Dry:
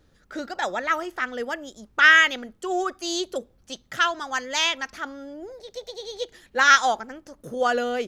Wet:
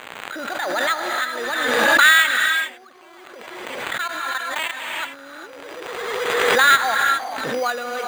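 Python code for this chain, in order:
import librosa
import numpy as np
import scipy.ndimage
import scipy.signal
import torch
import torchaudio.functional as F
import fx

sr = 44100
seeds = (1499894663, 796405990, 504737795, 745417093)

y = scipy.signal.sosfilt(scipy.signal.ellip(4, 1.0, 40, 11000.0, 'lowpass', fs=sr, output='sos'), x)
y = fx.peak_eq(y, sr, hz=1700.0, db=5.0, octaves=1.2)
y = fx.dmg_crackle(y, sr, seeds[0], per_s=490.0, level_db=-30.0)
y = fx.sample_hold(y, sr, seeds[1], rate_hz=5400.0, jitter_pct=0)
y = fx.level_steps(y, sr, step_db=22, at=(2.37, 4.97))
y = fx.highpass(y, sr, hz=610.0, slope=6)
y = fx.high_shelf(y, sr, hz=5000.0, db=-12.0)
y = fx.rev_gated(y, sr, seeds[2], gate_ms=440, shape='rising', drr_db=4.5)
y = fx.pre_swell(y, sr, db_per_s=24.0)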